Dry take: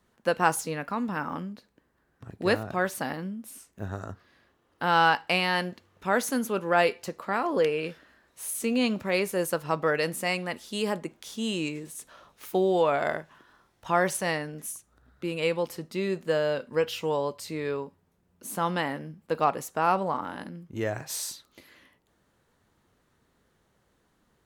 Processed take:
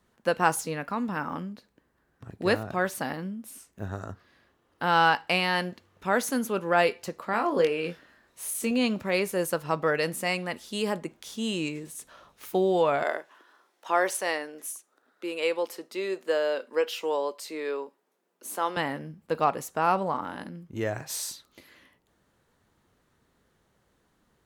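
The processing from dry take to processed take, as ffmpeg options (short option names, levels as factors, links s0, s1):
-filter_complex "[0:a]asettb=1/sr,asplit=3[s0][s1][s2];[s0]atrim=end=7.314[s3];[s1]atrim=start=7.31:end=8.71,asetpts=PTS-STARTPTS,afade=t=in:d=0.004:c=qsin,afade=t=out:st=1.396:d=0.004:c=qsin,asplit=2[s4][s5];[s5]adelay=23,volume=0.447[s6];[s4][s6]amix=inputs=2:normalize=0,atrim=end_sample=61740[s7];[s2]atrim=start=8.706[s8];[s3][s7]acrossfade=d=0.004:c1=hsin:c2=qsin[s9];[s9][s8]acrossfade=d=0.004:c1=qsin:c2=hsin,asettb=1/sr,asplit=3[s10][s11][s12];[s10]atrim=end=13.034[s13];[s11]atrim=start=13.03:end=18.77,asetpts=PTS-STARTPTS,afade=t=in:d=0.004:c=qsin,afade=t=out:st=5.736:d=0.004:c=qsin,highpass=f=310:w=0.5412,highpass=f=310:w=1.3066[s14];[s12]atrim=start=18.766[s15];[s13][s14]acrossfade=d=0.004:c1=hsin:c2=qsin[s16];[s16][s15]acrossfade=d=0.004:c1=qsin:c2=hsin"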